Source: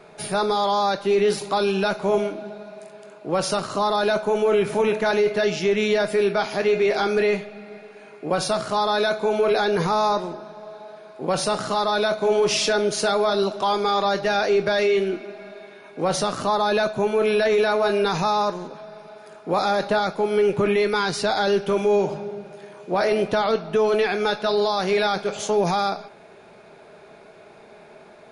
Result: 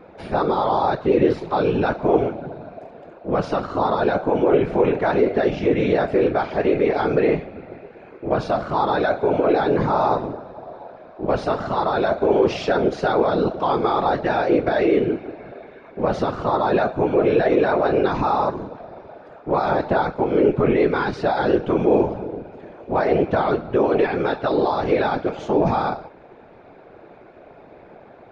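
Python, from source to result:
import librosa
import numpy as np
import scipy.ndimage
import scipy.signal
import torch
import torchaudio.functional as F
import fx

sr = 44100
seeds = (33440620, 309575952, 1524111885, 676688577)

y = fx.high_shelf(x, sr, hz=6200.0, db=-9.5)
y = fx.whisperise(y, sr, seeds[0])
y = fx.spacing_loss(y, sr, db_at_10k=27)
y = y * 10.0 ** (3.5 / 20.0)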